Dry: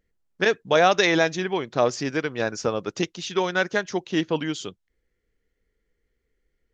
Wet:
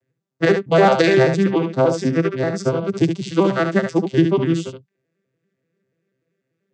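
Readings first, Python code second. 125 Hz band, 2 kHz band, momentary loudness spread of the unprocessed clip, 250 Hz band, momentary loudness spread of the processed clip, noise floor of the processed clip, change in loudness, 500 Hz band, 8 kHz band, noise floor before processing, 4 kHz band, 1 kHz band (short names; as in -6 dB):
+13.0 dB, 0.0 dB, 10 LU, +9.5 dB, 7 LU, -78 dBFS, +6.0 dB, +6.0 dB, n/a, -76 dBFS, -2.0 dB, +3.0 dB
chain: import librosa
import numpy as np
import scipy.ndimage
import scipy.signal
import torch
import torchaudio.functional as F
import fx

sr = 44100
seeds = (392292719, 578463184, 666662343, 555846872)

y = fx.vocoder_arp(x, sr, chord='major triad', root=48, every_ms=97)
y = fx.high_shelf(y, sr, hz=5300.0, db=9.0)
y = y + 10.0 ** (-7.0 / 20.0) * np.pad(y, (int(72 * sr / 1000.0), 0))[:len(y)]
y = y * librosa.db_to_amplitude(6.5)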